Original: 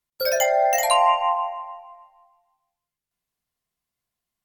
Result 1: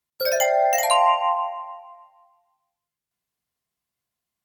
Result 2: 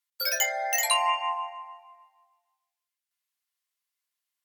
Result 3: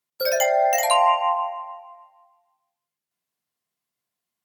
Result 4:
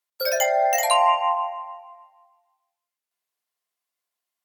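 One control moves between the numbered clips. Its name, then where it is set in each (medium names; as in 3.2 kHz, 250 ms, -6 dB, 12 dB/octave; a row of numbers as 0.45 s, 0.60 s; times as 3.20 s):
high-pass, cutoff frequency: 55 Hz, 1.4 kHz, 160 Hz, 480 Hz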